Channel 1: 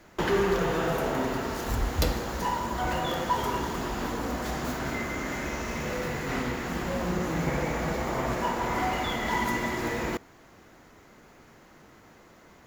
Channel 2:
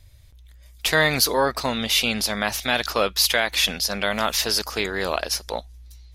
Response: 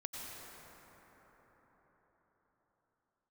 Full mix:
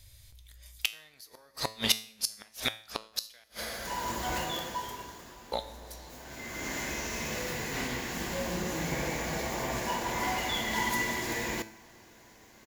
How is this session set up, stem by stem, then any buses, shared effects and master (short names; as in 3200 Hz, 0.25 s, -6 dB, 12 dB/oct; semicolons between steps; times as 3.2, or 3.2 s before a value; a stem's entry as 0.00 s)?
+0.5 dB, 1.45 s, send -22 dB, notch 1300 Hz, Q 5.8; auto duck -22 dB, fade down 1.15 s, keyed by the second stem
-1.0 dB, 0.00 s, muted 3.44–5.52, send -9 dB, dry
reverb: on, RT60 5.2 s, pre-delay 82 ms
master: flipped gate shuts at -11 dBFS, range -36 dB; high shelf 2400 Hz +11.5 dB; resonator 110 Hz, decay 0.48 s, harmonics all, mix 60%